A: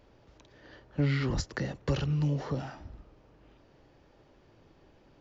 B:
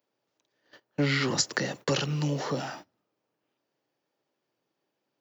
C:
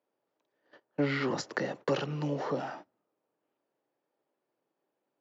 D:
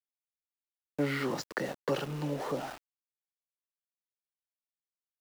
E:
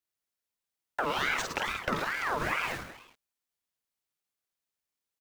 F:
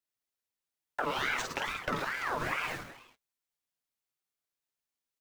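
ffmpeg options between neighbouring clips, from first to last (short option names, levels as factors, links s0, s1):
-af "highpass=f=120:w=0.5412,highpass=f=120:w=1.3066,aemphasis=mode=production:type=bsi,agate=range=0.0562:threshold=0.00316:ratio=16:detection=peak,volume=2.24"
-af "bandpass=f=580:t=q:w=0.51:csg=0"
-af "aeval=exprs='val(0)*gte(abs(val(0)),0.01)':c=same,volume=0.841"
-af "acompressor=threshold=0.0224:ratio=6,aecho=1:1:50|110|182|268.4|372.1:0.631|0.398|0.251|0.158|0.1,aeval=exprs='val(0)*sin(2*PI*1300*n/s+1300*0.45/2.3*sin(2*PI*2.3*n/s))':c=same,volume=2.37"
-af "flanger=delay=6.6:depth=1.6:regen=-47:speed=1.1:shape=sinusoidal,volume=1.19"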